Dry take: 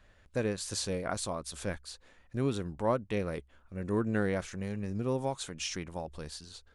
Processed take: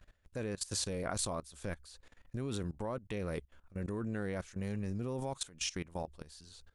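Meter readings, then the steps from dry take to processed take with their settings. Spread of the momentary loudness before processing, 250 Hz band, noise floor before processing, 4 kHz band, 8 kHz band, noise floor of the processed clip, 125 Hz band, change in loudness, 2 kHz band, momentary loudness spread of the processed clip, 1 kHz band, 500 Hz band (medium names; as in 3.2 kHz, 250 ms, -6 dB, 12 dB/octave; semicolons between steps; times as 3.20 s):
12 LU, -5.5 dB, -63 dBFS, -2.0 dB, -0.5 dB, -74 dBFS, -3.5 dB, -4.5 dB, -5.5 dB, 12 LU, -6.0 dB, -6.5 dB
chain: bass shelf 94 Hz +5 dB; level held to a coarse grid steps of 19 dB; treble shelf 7 kHz +5.5 dB; trim +1 dB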